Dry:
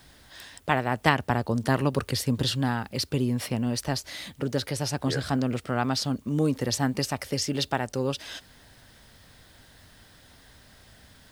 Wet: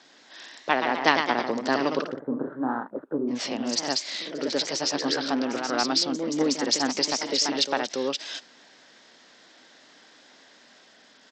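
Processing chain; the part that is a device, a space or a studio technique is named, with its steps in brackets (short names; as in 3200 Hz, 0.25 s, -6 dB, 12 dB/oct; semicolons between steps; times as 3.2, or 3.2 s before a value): 2.04–3.31 steep low-pass 1500 Hz 72 dB/oct; echoes that change speed 0.164 s, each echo +1 st, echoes 3, each echo -6 dB; dynamic EQ 4700 Hz, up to +6 dB, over -45 dBFS, Q 1.4; Bluetooth headset (HPF 250 Hz 24 dB/oct; downsampling 16000 Hz; gain +1 dB; SBC 64 kbps 32000 Hz)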